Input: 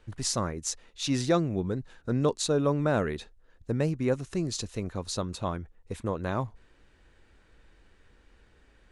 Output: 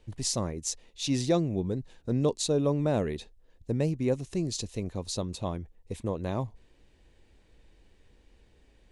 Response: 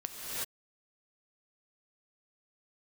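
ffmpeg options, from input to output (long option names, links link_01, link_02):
-af "equalizer=frequency=1400:width_type=o:width=0.74:gain=-12.5"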